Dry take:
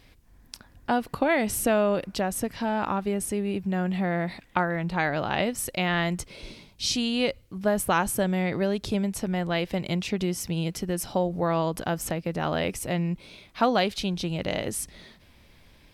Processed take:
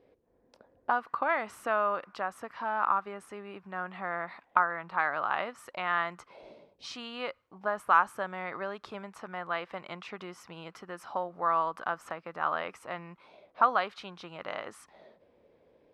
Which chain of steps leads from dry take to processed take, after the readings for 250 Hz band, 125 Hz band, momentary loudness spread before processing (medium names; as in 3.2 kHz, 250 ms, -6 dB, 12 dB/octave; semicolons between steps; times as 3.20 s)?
-19.0 dB, -21.5 dB, 7 LU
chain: auto-wah 450–1200 Hz, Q 3.9, up, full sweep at -28 dBFS; trim +7 dB